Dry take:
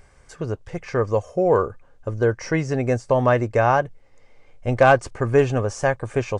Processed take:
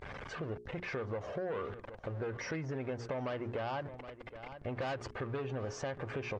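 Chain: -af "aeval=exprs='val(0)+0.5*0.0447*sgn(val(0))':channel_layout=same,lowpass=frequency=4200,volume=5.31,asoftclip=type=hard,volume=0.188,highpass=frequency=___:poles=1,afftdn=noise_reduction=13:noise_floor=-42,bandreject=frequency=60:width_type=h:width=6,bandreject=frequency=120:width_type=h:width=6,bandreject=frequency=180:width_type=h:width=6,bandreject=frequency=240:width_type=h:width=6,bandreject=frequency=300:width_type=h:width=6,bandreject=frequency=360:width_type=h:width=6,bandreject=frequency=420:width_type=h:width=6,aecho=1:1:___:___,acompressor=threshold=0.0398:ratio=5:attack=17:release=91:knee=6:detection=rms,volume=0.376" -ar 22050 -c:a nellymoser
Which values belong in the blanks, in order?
100, 769, 0.0841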